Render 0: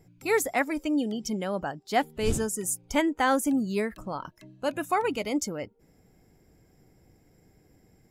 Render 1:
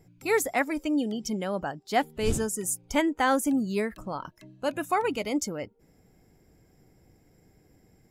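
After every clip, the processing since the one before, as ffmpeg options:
-af anull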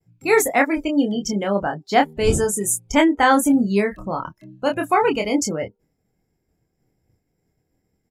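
-filter_complex "[0:a]agate=range=-33dB:threshold=-55dB:ratio=3:detection=peak,afftdn=nr=15:nf=-43,asplit=2[a][b];[b]adelay=25,volume=-4.5dB[c];[a][c]amix=inputs=2:normalize=0,volume=7.5dB"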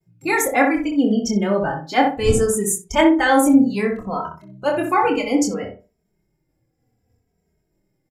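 -filter_complex "[0:a]asplit=2[a][b];[b]adelay=62,lowpass=f=1.4k:p=1,volume=-3.5dB,asplit=2[c][d];[d]adelay=62,lowpass=f=1.4k:p=1,volume=0.3,asplit=2[e][f];[f]adelay=62,lowpass=f=1.4k:p=1,volume=0.3,asplit=2[g][h];[h]adelay=62,lowpass=f=1.4k:p=1,volume=0.3[i];[c][e][g][i]amix=inputs=4:normalize=0[j];[a][j]amix=inputs=2:normalize=0,asplit=2[k][l];[l]adelay=2.8,afreqshift=-0.65[m];[k][m]amix=inputs=2:normalize=1,volume=2.5dB"

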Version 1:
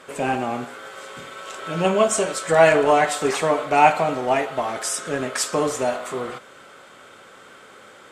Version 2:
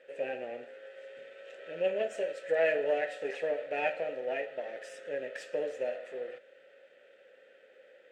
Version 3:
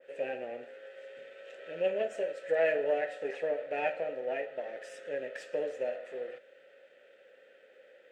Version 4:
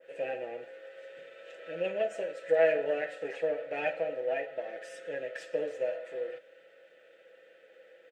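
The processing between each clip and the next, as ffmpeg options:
-filter_complex "[0:a]aeval=exprs='if(lt(val(0),0),0.447*val(0),val(0))':c=same,asplit=3[a][b][c];[a]bandpass=f=530:t=q:w=8,volume=0dB[d];[b]bandpass=f=1.84k:t=q:w=8,volume=-6dB[e];[c]bandpass=f=2.48k:t=q:w=8,volume=-9dB[f];[d][e][f]amix=inputs=3:normalize=0"
-af "adynamicequalizer=threshold=0.00447:dfrequency=2000:dqfactor=0.7:tfrequency=2000:tqfactor=0.7:attack=5:release=100:ratio=0.375:range=3:mode=cutabove:tftype=highshelf"
-af "aecho=1:1:6.1:0.56"

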